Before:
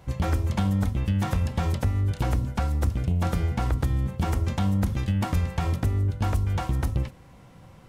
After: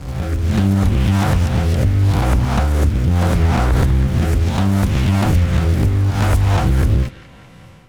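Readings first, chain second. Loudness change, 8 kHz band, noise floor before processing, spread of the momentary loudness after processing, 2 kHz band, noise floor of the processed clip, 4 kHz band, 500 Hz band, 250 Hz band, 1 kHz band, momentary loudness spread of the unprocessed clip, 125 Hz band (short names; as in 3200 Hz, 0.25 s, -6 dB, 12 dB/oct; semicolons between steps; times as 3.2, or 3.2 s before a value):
+10.0 dB, +10.5 dB, -50 dBFS, 2 LU, +11.5 dB, -41 dBFS, +11.0 dB, +11.0 dB, +10.0 dB, +9.0 dB, 2 LU, +10.0 dB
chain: spectral swells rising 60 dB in 0.64 s; AGC gain up to 8 dB; rotary speaker horn 0.75 Hz; in parallel at -10 dB: bit-crush 5-bit; on the sum: narrowing echo 0.196 s, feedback 63%, band-pass 2400 Hz, level -12 dB; maximiser +6.5 dB; Doppler distortion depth 0.39 ms; gain -5 dB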